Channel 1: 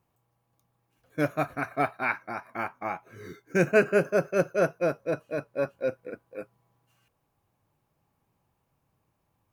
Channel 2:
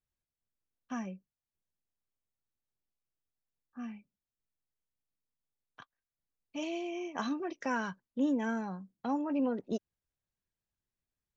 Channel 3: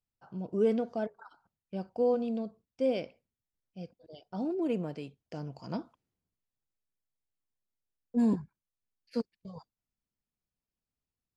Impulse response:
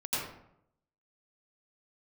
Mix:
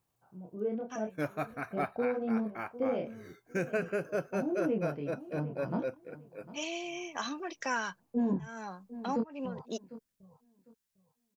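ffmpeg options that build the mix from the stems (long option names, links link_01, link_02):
-filter_complex "[0:a]volume=-7.5dB[link_01];[1:a]highpass=frequency=670:poles=1,highshelf=frequency=4000:gain=8.5,volume=3dB[link_02];[2:a]lowpass=1700,dynaudnorm=framelen=200:gausssize=11:maxgain=12.5dB,flanger=delay=22.5:depth=6.6:speed=0.87,volume=-7.5dB,asplit=3[link_03][link_04][link_05];[link_04]volume=-16.5dB[link_06];[link_05]apad=whole_len=501014[link_07];[link_02][link_07]sidechaincompress=threshold=-44dB:ratio=12:attack=9.6:release=196[link_08];[link_06]aecho=0:1:752|1504|2256|3008:1|0.22|0.0484|0.0106[link_09];[link_01][link_08][link_03][link_09]amix=inputs=4:normalize=0,alimiter=limit=-22dB:level=0:latency=1:release=150"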